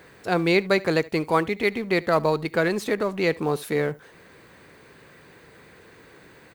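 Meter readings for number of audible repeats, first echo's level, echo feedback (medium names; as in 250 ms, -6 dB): 1, -22.5 dB, no regular repeats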